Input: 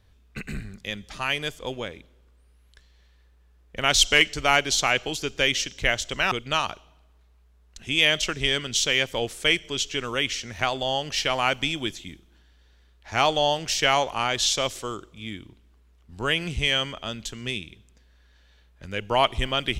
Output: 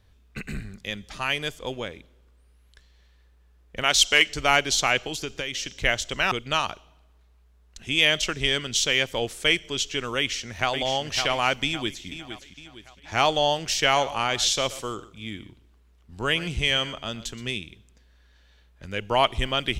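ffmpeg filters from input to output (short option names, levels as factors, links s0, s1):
-filter_complex "[0:a]asettb=1/sr,asplit=3[s0][s1][s2];[s0]atrim=end=3.834[s3];[s1]atrim=start=3.83:end=4.29,asetpts=PTS-STARTPTS,afade=t=in:d=0.004:c=qsin,afade=t=out:st=0.456:d=0.004:c=qsin,lowshelf=f=240:g=-10[s4];[s2]atrim=start=4.286[s5];[s3][s4]acrossfade=d=0.004:c1=hsin:c2=qsin[s6];[s6][s5]acrossfade=d=0.004:c1=qsin:c2=hsin,asettb=1/sr,asplit=3[s7][s8][s9];[s7]atrim=end=5.034[s10];[s8]atrim=start=5.03:end=5.83,asetpts=PTS-STARTPTS,afade=t=in:d=0.004:c=qsin,afade=t=out:st=0.796:d=0.004:c=qsin,acompressor=threshold=0.0501:ratio=6:attack=3.2:release=140:knee=1:detection=peak[s11];[s9]atrim=start=5.826[s12];[s10][s11]acrossfade=d=0.004:c1=hsin:c2=qsin[s13];[s13][s12]acrossfade=d=0.004:c1=qsin:c2=hsin,asplit=2[s14][s15];[s15]afade=t=in:st=10.17:d=0.01,afade=t=out:st=10.7:d=0.01,aecho=0:1:560|1120|1680|2240|2800:0.473151|0.212918|0.0958131|0.0431159|0.0194022[s16];[s14][s16]amix=inputs=2:normalize=0,asplit=2[s17][s18];[s18]afade=t=in:st=11.65:d=0.01,afade=t=out:st=12.07:d=0.01,aecho=0:1:460|920|1380|1840|2300:0.316228|0.142302|0.0640361|0.0288163|0.0129673[s19];[s17][s19]amix=inputs=2:normalize=0,asettb=1/sr,asplit=3[s20][s21][s22];[s20]atrim=end=13.844[s23];[s21]atrim=start=13.84:end=17.45,asetpts=PTS-STARTPTS,afade=t=in:d=0.004:c=qsin,afade=t=out:st=3.606:d=0.004:c=qsin,aecho=1:1:122:0.15,atrim=end_sample=159201[s24];[s22]atrim=start=17.446[s25];[s23][s24]acrossfade=d=0.004:c1=hsin:c2=qsin[s26];[s26][s25]acrossfade=d=0.004:c1=qsin:c2=hsin"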